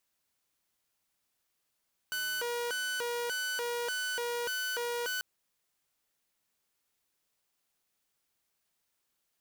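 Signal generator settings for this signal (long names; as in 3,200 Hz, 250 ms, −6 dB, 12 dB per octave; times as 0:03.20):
siren hi-lo 478–1,500 Hz 1.7 per second saw −29.5 dBFS 3.09 s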